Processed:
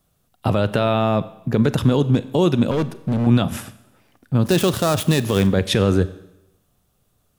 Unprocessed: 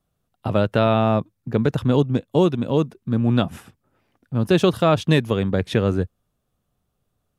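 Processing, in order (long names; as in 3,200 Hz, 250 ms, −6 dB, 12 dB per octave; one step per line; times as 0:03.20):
0:04.45–0:05.47: gap after every zero crossing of 0.08 ms
high-shelf EQ 3,800 Hz +7 dB
brickwall limiter −14 dBFS, peak gain reduction 11 dB
0:02.71–0:03.27: hard clipping −23.5 dBFS, distortion −15 dB
four-comb reverb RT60 0.87 s, combs from 30 ms, DRR 15 dB
level +7 dB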